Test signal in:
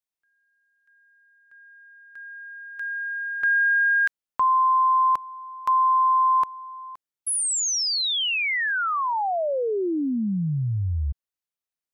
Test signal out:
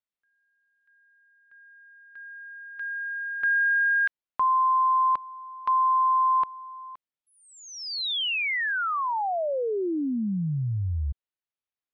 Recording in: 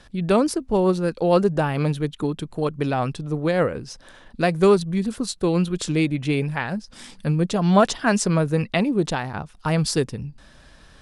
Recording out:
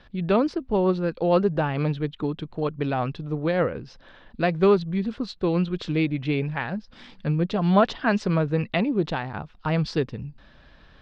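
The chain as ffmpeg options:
-af "lowpass=f=4.1k:w=0.5412,lowpass=f=4.1k:w=1.3066,volume=-2.5dB"

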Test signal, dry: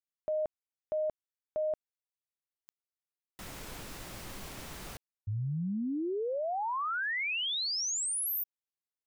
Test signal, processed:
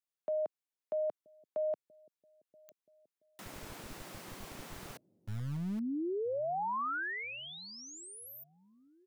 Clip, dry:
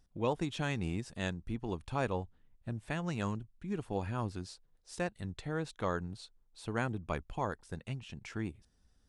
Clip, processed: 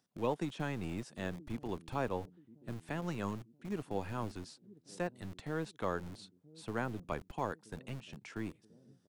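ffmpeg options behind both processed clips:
-filter_complex "[0:a]acrossover=split=140|470|1800[a][b][c][d];[a]acrusher=bits=5:dc=4:mix=0:aa=0.000001[e];[b]aecho=1:1:978|1956|2934|3912:0.15|0.0748|0.0374|0.0187[f];[d]acompressor=threshold=-49dB:ratio=6:attack=16:release=140[g];[e][f][c][g]amix=inputs=4:normalize=0,volume=-1.5dB"

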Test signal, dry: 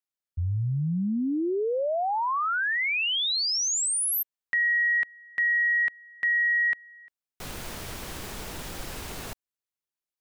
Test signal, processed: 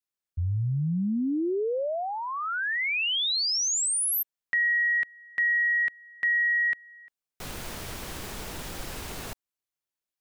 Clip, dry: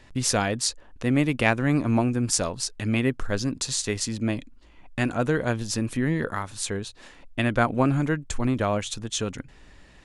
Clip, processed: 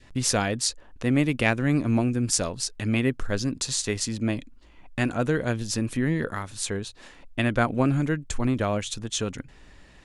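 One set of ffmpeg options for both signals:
-af "adynamicequalizer=threshold=0.00891:dfrequency=940:dqfactor=1.2:tfrequency=940:tqfactor=1.2:attack=5:release=100:ratio=0.375:range=3.5:mode=cutabove:tftype=bell"

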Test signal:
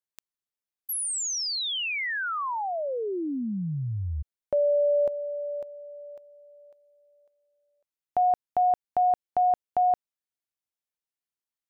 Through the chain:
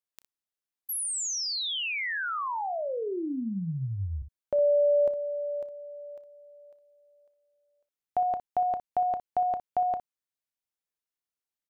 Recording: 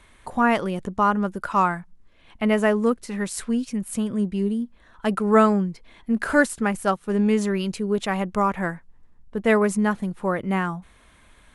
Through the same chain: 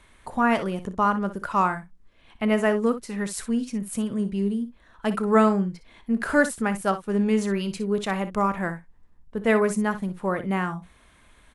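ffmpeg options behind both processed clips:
-af "aecho=1:1:31|60:0.133|0.237,volume=-2dB"

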